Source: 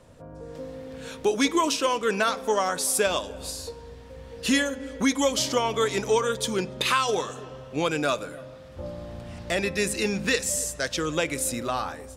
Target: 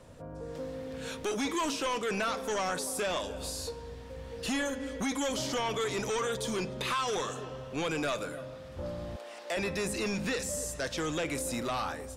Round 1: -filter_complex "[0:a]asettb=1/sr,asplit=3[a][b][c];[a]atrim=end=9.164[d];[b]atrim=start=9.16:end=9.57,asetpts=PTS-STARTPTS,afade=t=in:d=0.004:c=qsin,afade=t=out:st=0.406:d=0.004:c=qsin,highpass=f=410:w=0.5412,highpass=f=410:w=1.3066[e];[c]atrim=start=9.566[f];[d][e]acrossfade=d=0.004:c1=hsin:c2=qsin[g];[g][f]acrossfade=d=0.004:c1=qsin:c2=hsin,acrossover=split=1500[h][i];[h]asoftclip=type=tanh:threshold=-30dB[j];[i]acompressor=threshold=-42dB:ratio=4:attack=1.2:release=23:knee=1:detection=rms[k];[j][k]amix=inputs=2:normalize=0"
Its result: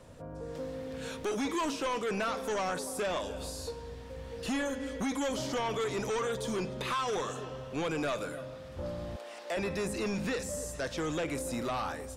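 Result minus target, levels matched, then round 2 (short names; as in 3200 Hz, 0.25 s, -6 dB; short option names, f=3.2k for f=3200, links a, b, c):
compressor: peak gain reduction +5 dB
-filter_complex "[0:a]asettb=1/sr,asplit=3[a][b][c];[a]atrim=end=9.164[d];[b]atrim=start=9.16:end=9.57,asetpts=PTS-STARTPTS,afade=t=in:d=0.004:c=qsin,afade=t=out:st=0.406:d=0.004:c=qsin,highpass=f=410:w=0.5412,highpass=f=410:w=1.3066[e];[c]atrim=start=9.566[f];[d][e]acrossfade=d=0.004:c1=hsin:c2=qsin[g];[g][f]acrossfade=d=0.004:c1=qsin:c2=hsin,acrossover=split=1500[h][i];[h]asoftclip=type=tanh:threshold=-30dB[j];[i]acompressor=threshold=-35.5dB:ratio=4:attack=1.2:release=23:knee=1:detection=rms[k];[j][k]amix=inputs=2:normalize=0"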